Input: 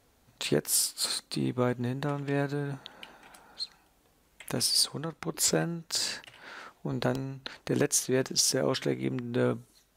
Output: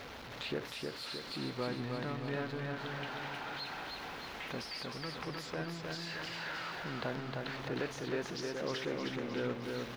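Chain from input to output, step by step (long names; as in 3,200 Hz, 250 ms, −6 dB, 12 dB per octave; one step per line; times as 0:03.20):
converter with a step at zero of −29 dBFS
spectral tilt +2.5 dB per octave
downward compressor, threshold −21 dBFS, peak gain reduction 8.5 dB
high-frequency loss of the air 300 metres
repeating echo 310 ms, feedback 55%, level −3.5 dB
level −7.5 dB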